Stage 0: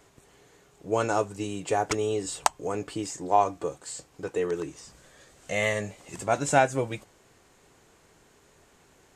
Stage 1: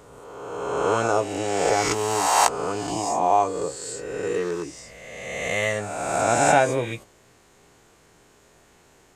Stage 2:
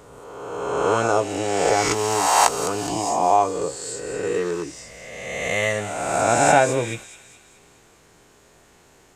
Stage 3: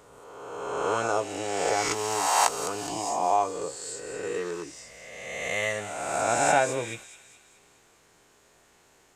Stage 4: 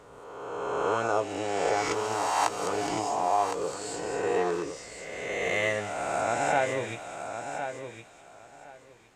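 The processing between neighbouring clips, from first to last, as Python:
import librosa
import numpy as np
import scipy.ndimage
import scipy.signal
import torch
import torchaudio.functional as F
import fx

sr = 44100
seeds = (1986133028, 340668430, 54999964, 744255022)

y1 = fx.spec_swells(x, sr, rise_s=1.76)
y1 = fx.doubler(y1, sr, ms=17.0, db=-11)
y2 = fx.echo_wet_highpass(y1, sr, ms=209, feedback_pct=51, hz=3200.0, wet_db=-9.0)
y2 = y2 * 10.0 ** (2.0 / 20.0)
y3 = fx.low_shelf(y2, sr, hz=380.0, db=-6.5)
y3 = y3 * 10.0 ** (-5.0 / 20.0)
y4 = fx.lowpass(y3, sr, hz=3400.0, slope=6)
y4 = fx.rider(y4, sr, range_db=4, speed_s=0.5)
y4 = fx.echo_feedback(y4, sr, ms=1062, feedback_pct=18, wet_db=-8.5)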